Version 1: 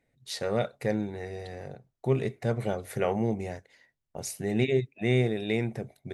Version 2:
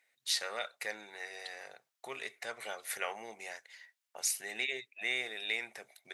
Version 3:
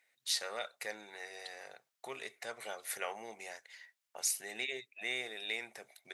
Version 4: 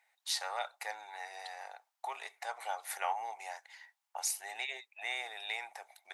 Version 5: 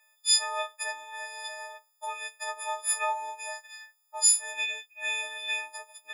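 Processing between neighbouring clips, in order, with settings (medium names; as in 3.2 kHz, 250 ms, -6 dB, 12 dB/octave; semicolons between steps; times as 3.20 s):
in parallel at +2 dB: compression, threshold -37 dBFS, peak gain reduction 16.5 dB; on the sum: high-pass 1.4 kHz 12 dB/octave
dynamic bell 2.1 kHz, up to -4 dB, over -48 dBFS, Q 0.72
resonant high-pass 830 Hz, resonance Q 5.6; trim -1.5 dB
partials quantised in pitch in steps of 6 st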